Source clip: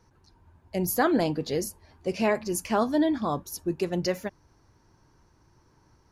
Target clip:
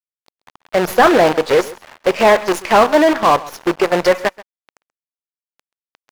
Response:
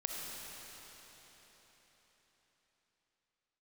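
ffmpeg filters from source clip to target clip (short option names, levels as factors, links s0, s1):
-filter_complex "[0:a]equalizer=f=250:t=o:w=1:g=-4,equalizer=f=500:t=o:w=1:g=7,equalizer=f=1000:t=o:w=1:g=6,equalizer=f=2000:t=o:w=1:g=6,acrusher=bits=5:dc=4:mix=0:aa=0.000001,asplit=2[s0][s1];[s1]highpass=f=720:p=1,volume=8.91,asoftclip=type=tanh:threshold=0.631[s2];[s0][s2]amix=inputs=2:normalize=0,lowpass=f=1900:p=1,volume=0.501,aecho=1:1:132:0.106,volume=1.5"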